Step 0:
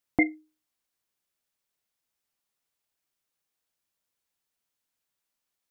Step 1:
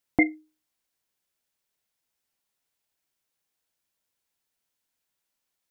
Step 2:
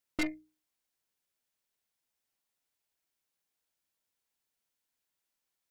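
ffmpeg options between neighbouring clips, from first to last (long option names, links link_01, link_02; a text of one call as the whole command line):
ffmpeg -i in.wav -af "bandreject=frequency=1200:width=16,volume=2dB" out.wav
ffmpeg -i in.wav -af "bandreject=frequency=60:width_type=h:width=6,bandreject=frequency=120:width_type=h:width=6,bandreject=frequency=180:width_type=h:width=6,aeval=exprs='(tanh(25.1*val(0)+0.7)-tanh(0.7))/25.1':channel_layout=same" out.wav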